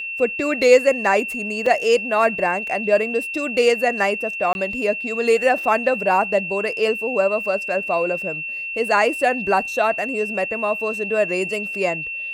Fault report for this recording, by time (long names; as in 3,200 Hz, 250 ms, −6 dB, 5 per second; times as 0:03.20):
whistle 2,700 Hz −26 dBFS
0:01.66: drop-out 3.5 ms
0:04.53–0:04.55: drop-out 21 ms